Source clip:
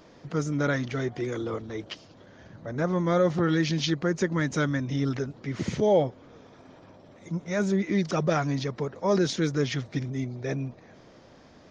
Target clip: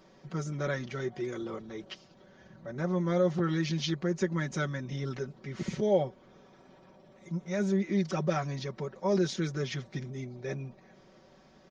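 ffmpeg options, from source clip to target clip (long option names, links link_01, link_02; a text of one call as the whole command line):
ffmpeg -i in.wav -af "aecho=1:1:5.3:0.65,volume=-7dB" out.wav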